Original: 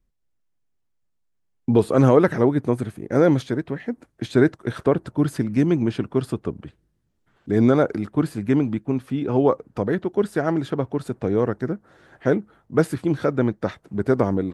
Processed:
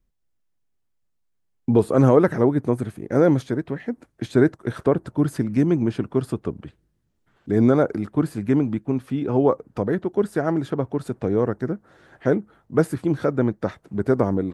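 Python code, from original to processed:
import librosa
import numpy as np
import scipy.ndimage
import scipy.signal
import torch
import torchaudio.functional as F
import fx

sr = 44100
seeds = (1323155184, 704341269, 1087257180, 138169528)

y = fx.dynamic_eq(x, sr, hz=3300.0, q=0.83, threshold_db=-42.0, ratio=4.0, max_db=-6)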